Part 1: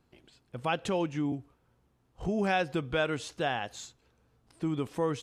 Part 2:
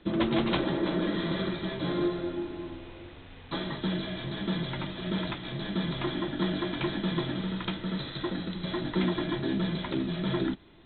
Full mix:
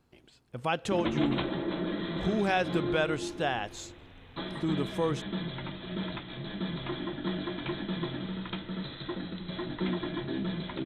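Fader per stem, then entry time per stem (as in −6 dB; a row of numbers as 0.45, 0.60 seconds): +0.5, −4.0 decibels; 0.00, 0.85 seconds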